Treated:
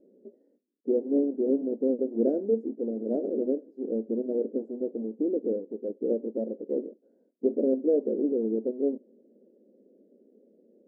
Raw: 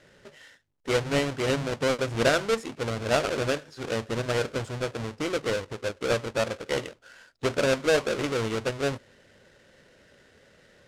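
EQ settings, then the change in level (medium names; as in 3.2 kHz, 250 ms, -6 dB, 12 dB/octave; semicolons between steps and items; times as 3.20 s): brick-wall FIR high-pass 200 Hz; inverse Chebyshev low-pass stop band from 1.1 kHz, stop band 50 dB; +5.5 dB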